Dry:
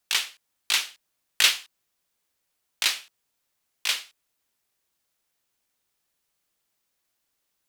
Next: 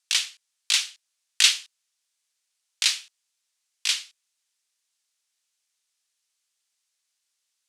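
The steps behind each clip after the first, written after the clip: weighting filter ITU-R 468; gain -8 dB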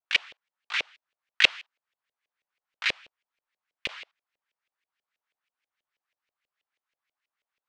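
tilt shelf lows -3 dB; LFO low-pass saw up 6.2 Hz 520–2600 Hz; gain -1.5 dB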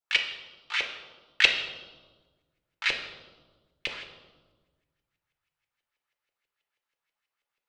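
reverb RT60 1.4 s, pre-delay 6 ms, DRR 3.5 dB; gain -1 dB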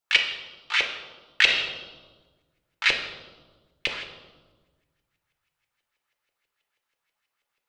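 maximiser +9.5 dB; gain -4 dB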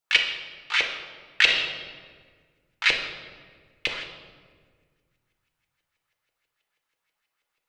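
shoebox room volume 2600 m³, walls mixed, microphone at 0.58 m

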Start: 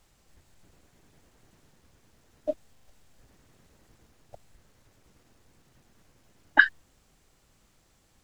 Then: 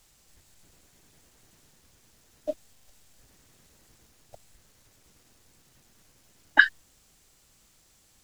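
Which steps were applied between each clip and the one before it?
high shelf 2900 Hz +11 dB; gain -2 dB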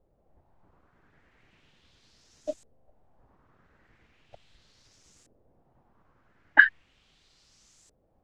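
limiter -5.5 dBFS, peak gain reduction 4 dB; LFO low-pass saw up 0.38 Hz 500–7800 Hz; gain -2 dB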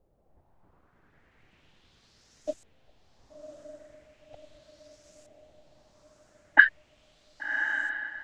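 diffused feedback echo 1.12 s, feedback 51%, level -7 dB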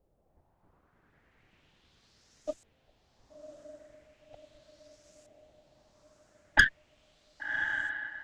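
tube stage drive 11 dB, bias 0.6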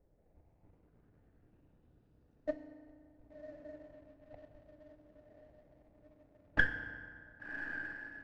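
median filter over 41 samples; tape spacing loss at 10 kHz 26 dB; FDN reverb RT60 2.1 s, low-frequency decay 1.1×, high-frequency decay 0.6×, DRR 7 dB; gain +2.5 dB

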